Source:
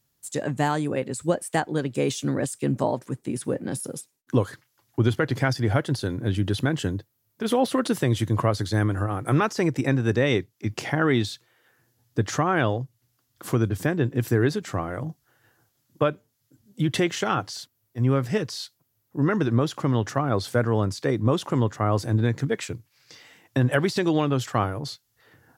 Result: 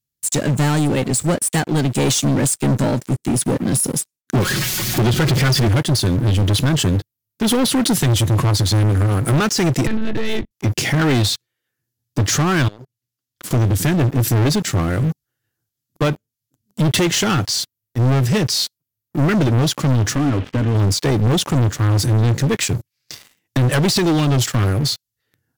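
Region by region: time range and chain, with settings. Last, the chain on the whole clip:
0:04.35–0:05.68: converter with a step at zero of −28 dBFS + low-pass filter 4,000 Hz 6 dB per octave + comb filter 5.4 ms, depth 68%
0:09.87–0:10.51: one-pitch LPC vocoder at 8 kHz 220 Hz + downward compressor 3 to 1, threshold −28 dBFS
0:12.68–0:13.51: high-shelf EQ 9,400 Hz −4.5 dB + downward compressor 8 to 1, threshold −41 dBFS + high-pass filter 170 Hz 6 dB per octave
0:20.15–0:20.75: variable-slope delta modulation 16 kbit/s + downward compressor 2.5 to 1, threshold −28 dBFS + parametric band 280 Hz +12.5 dB 0.3 octaves
whole clip: parametric band 840 Hz −13 dB 2.3 octaves; leveller curve on the samples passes 5

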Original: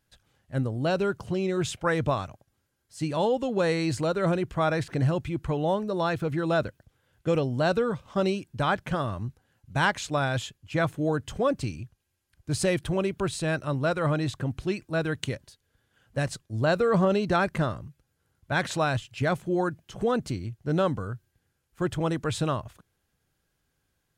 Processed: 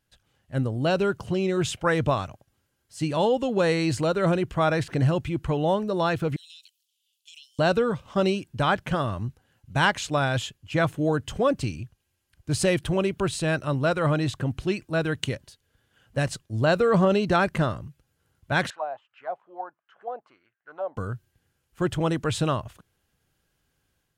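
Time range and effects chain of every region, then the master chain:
0:06.36–0:07.59: Butterworth high-pass 2,900 Hz 48 dB per octave + downward compressor 10 to 1, threshold −46 dBFS
0:18.70–0:20.97: bass and treble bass −14 dB, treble −9 dB + envelope filter 660–1,800 Hz, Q 5.3, down, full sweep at −22 dBFS
whole clip: parametric band 2,900 Hz +4 dB 0.23 octaves; automatic gain control gain up to 4.5 dB; level −2 dB

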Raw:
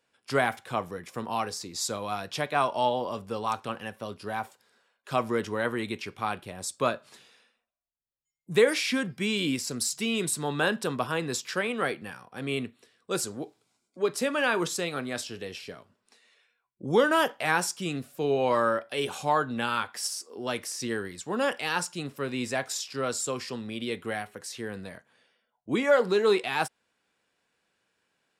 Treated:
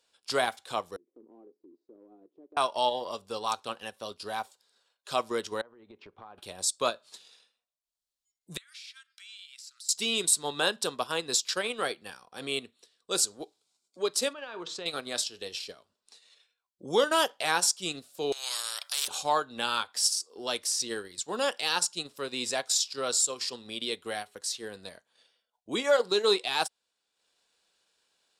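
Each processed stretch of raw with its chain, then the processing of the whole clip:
0:00.96–0:02.57: flat-topped band-pass 320 Hz, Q 2.5 + downward compressor 2.5 to 1, threshold −47 dBFS
0:05.61–0:06.38: low-pass filter 1,100 Hz + downward compressor 8 to 1, threshold −41 dBFS
0:08.57–0:09.89: elliptic high-pass filter 1,300 Hz, stop band 50 dB + downward compressor 4 to 1, threshold −48 dBFS + high-shelf EQ 4,100 Hz −7.5 dB
0:14.33–0:14.86: low-pass filter 2,800 Hz + downward compressor 10 to 1, threshold −32 dBFS
0:18.32–0:19.08: high-pass filter 1,400 Hz 24 dB per octave + every bin compressed towards the loudest bin 4 to 1
whole clip: octave-band graphic EQ 125/250/2,000/4,000/8,000 Hz −12/−5/−6/+9/+6 dB; transient designer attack −1 dB, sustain −8 dB

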